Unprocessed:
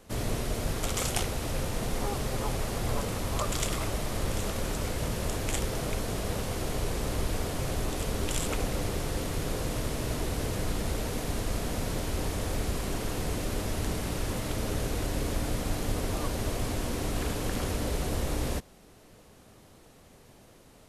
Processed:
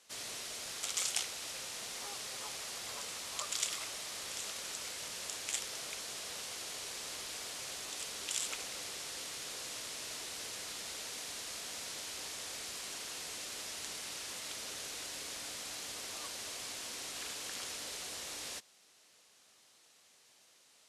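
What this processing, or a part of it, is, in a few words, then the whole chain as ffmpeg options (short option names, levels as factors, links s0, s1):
piezo pickup straight into a mixer: -af "lowpass=6000,aderivative,volume=1.78"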